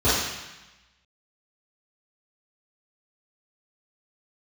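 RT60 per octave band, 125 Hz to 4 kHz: 1.2, 1.1, 0.90, 1.1, 1.2, 1.1 s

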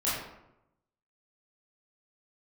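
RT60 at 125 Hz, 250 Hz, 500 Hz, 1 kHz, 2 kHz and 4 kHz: 1.1, 0.95, 0.90, 0.85, 0.65, 0.50 s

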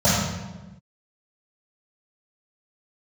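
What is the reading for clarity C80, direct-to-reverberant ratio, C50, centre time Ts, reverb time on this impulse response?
1.5 dB, -18.0 dB, -1.0 dB, 80 ms, 1.1 s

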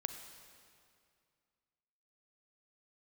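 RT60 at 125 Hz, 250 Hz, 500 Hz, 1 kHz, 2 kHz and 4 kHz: 2.5, 2.5, 2.3, 2.3, 2.1, 2.0 s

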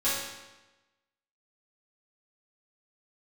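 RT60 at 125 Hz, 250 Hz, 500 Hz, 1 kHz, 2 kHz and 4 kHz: 1.1, 1.1, 1.1, 1.1, 1.1, 0.95 s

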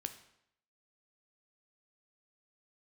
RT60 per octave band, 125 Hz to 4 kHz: 0.75, 0.75, 0.75, 0.75, 0.70, 0.65 s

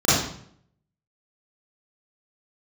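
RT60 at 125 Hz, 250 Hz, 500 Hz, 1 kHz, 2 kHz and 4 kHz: 0.80, 0.75, 0.65, 0.60, 0.55, 0.50 s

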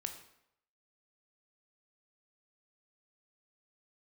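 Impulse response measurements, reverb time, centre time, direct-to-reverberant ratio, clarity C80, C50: 0.75 s, 16 ms, 5.5 dB, 11.5 dB, 9.0 dB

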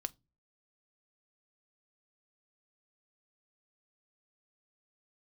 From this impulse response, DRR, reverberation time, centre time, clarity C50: 11.5 dB, not exponential, 2 ms, 28.5 dB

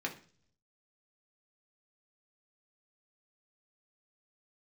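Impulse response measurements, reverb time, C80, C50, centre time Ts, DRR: 0.45 s, 17.5 dB, 12.0 dB, 12 ms, 0.0 dB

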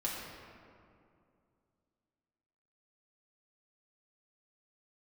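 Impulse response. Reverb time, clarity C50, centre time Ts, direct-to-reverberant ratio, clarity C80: 2.4 s, 0.0 dB, 0.108 s, -5.5 dB, 1.5 dB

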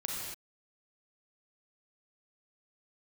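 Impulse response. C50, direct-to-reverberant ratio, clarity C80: -1.0 dB, -2.5 dB, 1.0 dB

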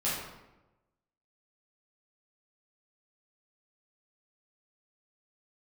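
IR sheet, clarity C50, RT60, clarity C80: 0.5 dB, 1.0 s, 4.0 dB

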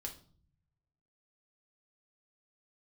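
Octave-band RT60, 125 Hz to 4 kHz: 1.5, 1.0, 0.55, 0.45, 0.35, 0.40 s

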